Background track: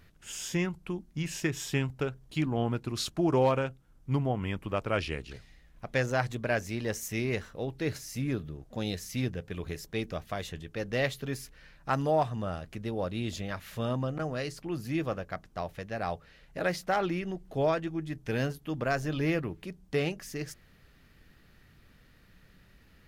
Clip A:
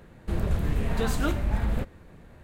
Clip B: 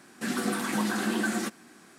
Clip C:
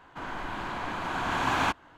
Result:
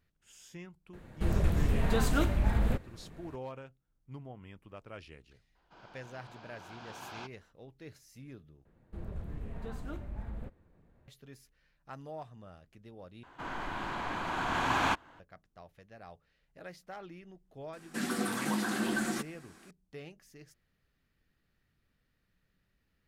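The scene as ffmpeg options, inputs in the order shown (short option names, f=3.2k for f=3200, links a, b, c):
-filter_complex "[1:a]asplit=2[a][b];[3:a]asplit=2[c][d];[0:a]volume=-17.5dB[e];[c]highpass=130,equalizer=f=270:t=q:w=4:g=-9,equalizer=f=1.1k:t=q:w=4:g=-7,equalizer=f=1.9k:t=q:w=4:g=-9,equalizer=f=5k:t=q:w=4:g=9,lowpass=f=6.4k:w=0.5412,lowpass=f=6.4k:w=1.3066[f];[b]highshelf=f=2k:g=-10.5[g];[e]asplit=3[h][i][j];[h]atrim=end=8.654[k];[g]atrim=end=2.43,asetpts=PTS-STARTPTS,volume=-14.5dB[l];[i]atrim=start=11.076:end=13.234[m];[d]atrim=end=1.97,asetpts=PTS-STARTPTS,volume=-2.5dB[n];[j]atrim=start=15.196[o];[a]atrim=end=2.43,asetpts=PTS-STARTPTS,volume=-1.5dB,afade=t=in:d=0.004:c=hsin,afade=t=out:st=2.426:d=0.004:c=hsin,adelay=930[p];[f]atrim=end=1.97,asetpts=PTS-STARTPTS,volume=-16.5dB,afade=t=in:d=0.004:c=hsin,afade=t=out:st=1.966:d=0.004:c=hsin,adelay=5550[q];[2:a]atrim=end=1.98,asetpts=PTS-STARTPTS,volume=-4dB,afade=t=in:d=0.004:c=hsin,afade=t=out:st=1.976:d=0.004:c=hsin,adelay=17730[r];[k][l]acrossfade=d=0.004:c1=hsin:c2=hsin[s];[s][m]acrossfade=d=0.004:c1=hsin:c2=hsin[t];[t][n]acrossfade=d=0.004:c1=hsin:c2=hsin[u];[u][o]acrossfade=d=0.004:c1=hsin:c2=hsin[v];[v][p][q][r]amix=inputs=4:normalize=0"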